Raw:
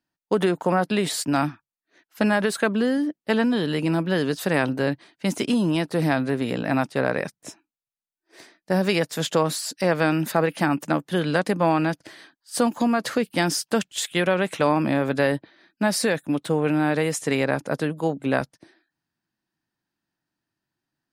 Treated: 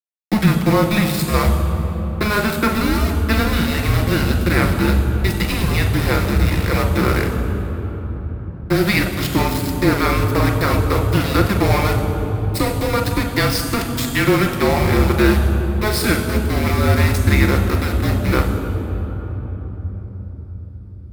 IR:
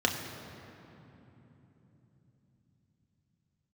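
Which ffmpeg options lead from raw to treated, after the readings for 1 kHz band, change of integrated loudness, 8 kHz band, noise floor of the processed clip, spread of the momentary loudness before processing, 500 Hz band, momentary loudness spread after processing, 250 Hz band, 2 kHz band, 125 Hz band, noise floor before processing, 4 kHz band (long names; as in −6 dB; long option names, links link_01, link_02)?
+4.5 dB, +5.5 dB, +2.5 dB, −32 dBFS, 5 LU, +2.5 dB, 12 LU, +4.5 dB, +5.5 dB, +12.5 dB, below −85 dBFS, +6.0 dB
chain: -filter_complex "[0:a]aeval=exprs='val(0)*gte(abs(val(0)),0.0668)':channel_layout=same,afreqshift=-210,aemphasis=mode=production:type=50fm[link_01];[1:a]atrim=start_sample=2205,asetrate=30429,aresample=44100[link_02];[link_01][link_02]afir=irnorm=-1:irlink=0,volume=-8dB"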